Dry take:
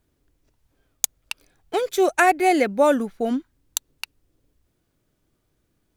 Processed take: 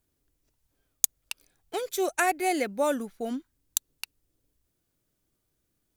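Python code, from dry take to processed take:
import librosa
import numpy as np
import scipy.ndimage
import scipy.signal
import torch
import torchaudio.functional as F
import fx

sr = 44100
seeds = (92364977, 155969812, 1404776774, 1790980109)

y = fx.high_shelf(x, sr, hz=4800.0, db=10.5)
y = F.gain(torch.from_numpy(y), -9.0).numpy()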